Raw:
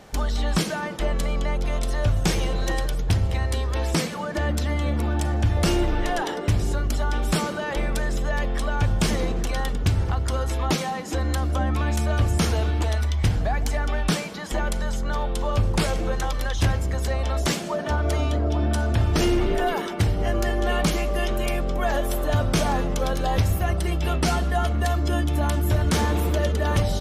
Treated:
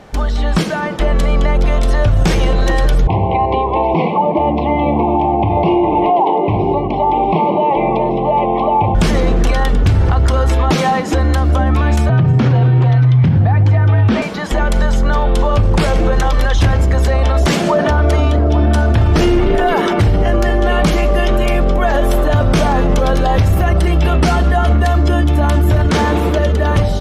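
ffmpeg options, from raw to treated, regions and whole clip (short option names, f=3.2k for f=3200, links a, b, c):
-filter_complex "[0:a]asettb=1/sr,asplit=3[a][b][c];[a]atrim=end=3.074[d];[b]atrim=start=3.07:end=8.95,asetpts=PTS-STARTPTS,afade=t=in:d=0.004:c=qsin,afade=t=out:st=5.876:d=0.004:c=qsin,asuperstop=centerf=1500:order=12:qfactor=1.5,highpass=180,equalizer=f=250:t=q:w=4:g=-7,equalizer=f=370:t=q:w=4:g=3,equalizer=f=540:t=q:w=4:g=-5,equalizer=f=780:t=q:w=4:g=9,equalizer=f=1.1k:t=q:w=4:g=6,equalizer=f=2.2k:t=q:w=4:g=-3,lowpass=f=2.4k:w=0.5412,lowpass=f=2.4k:w=1.3066[e];[c]atrim=start=8.946[f];[d][e]acrossfade=d=0.004:c1=hsin:c2=qsin[g];[g][f]acrossfade=d=0.004:c1=qsin:c2=hsin,asettb=1/sr,asplit=3[h][i][j];[h]atrim=end=12.094[k];[i]atrim=start=12.09:end=14.22,asetpts=PTS-STARTPTS,afade=t=in:d=0.004:c=qsin,afade=t=out:st=2.126:d=0.004:c=qsin,lowpass=3.3k,lowshelf=f=180:g=7,afreqshift=53[l];[j]atrim=start=14.216[m];[k][l]acrossfade=d=0.004:c1=hsin:c2=qsin[n];[n][m]acrossfade=d=0.004:c1=qsin:c2=hsin,asettb=1/sr,asplit=3[o][p][q];[o]atrim=end=25.884[r];[p]atrim=start=25.88:end=26.39,asetpts=PTS-STARTPTS,afade=t=in:d=0.004:c=qsin,afade=t=out:st=0.506:d=0.004:c=qsin,acrossover=split=8000[s][t];[t]acompressor=threshold=-42dB:ratio=4:attack=1:release=60[u];[s][u]amix=inputs=2:normalize=0,lowshelf=f=87:g=-10.5[v];[q]atrim=start=26.386[w];[r][v]acrossfade=d=0.004:c1=hsin:c2=qsin[x];[x][w]acrossfade=d=0.004:c1=qsin:c2=hsin,highshelf=f=4.8k:g=-11.5,dynaudnorm=f=240:g=11:m=11.5dB,alimiter=level_in=12.5dB:limit=-1dB:release=50:level=0:latency=1,volume=-4.5dB"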